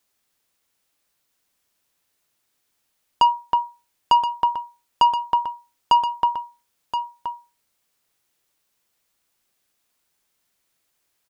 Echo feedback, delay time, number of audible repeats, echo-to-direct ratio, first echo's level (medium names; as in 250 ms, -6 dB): no regular repeats, 1024 ms, 1, -9.5 dB, -9.5 dB